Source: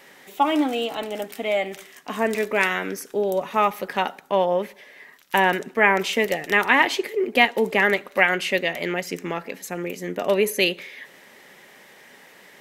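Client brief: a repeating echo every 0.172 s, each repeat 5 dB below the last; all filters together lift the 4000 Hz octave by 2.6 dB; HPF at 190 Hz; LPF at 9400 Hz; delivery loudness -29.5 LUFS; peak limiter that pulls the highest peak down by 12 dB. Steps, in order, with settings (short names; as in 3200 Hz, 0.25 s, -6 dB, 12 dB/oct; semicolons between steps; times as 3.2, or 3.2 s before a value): HPF 190 Hz; LPF 9400 Hz; bell 4000 Hz +4 dB; limiter -14 dBFS; feedback echo 0.172 s, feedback 56%, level -5 dB; gain -5 dB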